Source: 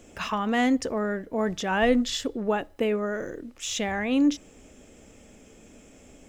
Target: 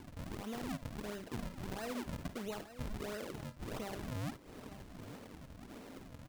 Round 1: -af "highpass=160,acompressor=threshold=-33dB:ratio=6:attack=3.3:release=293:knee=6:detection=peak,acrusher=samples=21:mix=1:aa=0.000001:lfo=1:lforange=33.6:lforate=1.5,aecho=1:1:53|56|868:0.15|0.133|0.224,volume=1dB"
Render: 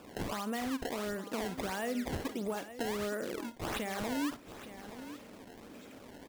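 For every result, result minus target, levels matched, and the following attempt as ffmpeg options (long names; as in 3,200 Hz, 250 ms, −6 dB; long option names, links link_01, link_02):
sample-and-hold swept by an LFO: distortion −13 dB; downward compressor: peak gain reduction −6 dB
-af "highpass=160,acompressor=threshold=-33dB:ratio=6:attack=3.3:release=293:knee=6:detection=peak,acrusher=samples=66:mix=1:aa=0.000001:lfo=1:lforange=106:lforate=1.5,aecho=1:1:53|56|868:0.15|0.133|0.224,volume=1dB"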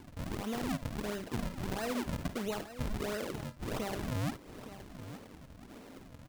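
downward compressor: peak gain reduction −6 dB
-af "highpass=160,acompressor=threshold=-40dB:ratio=6:attack=3.3:release=293:knee=6:detection=peak,acrusher=samples=66:mix=1:aa=0.000001:lfo=1:lforange=106:lforate=1.5,aecho=1:1:53|56|868:0.15|0.133|0.224,volume=1dB"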